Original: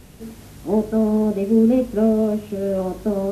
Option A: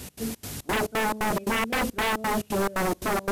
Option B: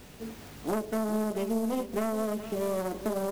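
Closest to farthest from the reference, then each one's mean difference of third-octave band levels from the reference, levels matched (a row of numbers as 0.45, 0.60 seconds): B, A; 9.0, 13.0 decibels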